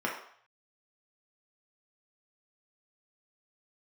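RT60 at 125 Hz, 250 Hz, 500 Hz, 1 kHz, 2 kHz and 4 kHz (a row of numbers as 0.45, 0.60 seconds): 0.75, 0.40, 0.55, 0.65, 0.60, 0.60 seconds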